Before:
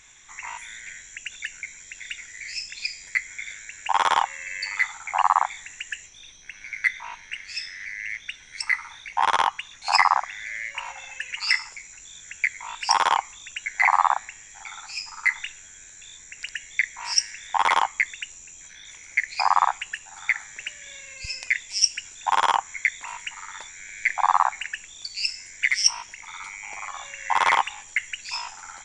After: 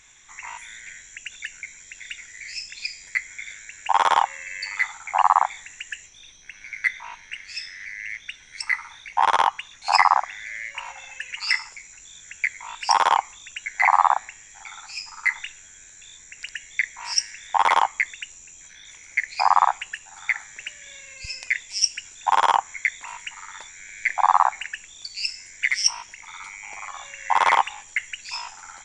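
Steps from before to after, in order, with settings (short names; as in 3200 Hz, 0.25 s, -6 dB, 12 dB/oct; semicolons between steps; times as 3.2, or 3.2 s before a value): dynamic EQ 670 Hz, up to +5 dB, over -34 dBFS, Q 0.89; gain -1 dB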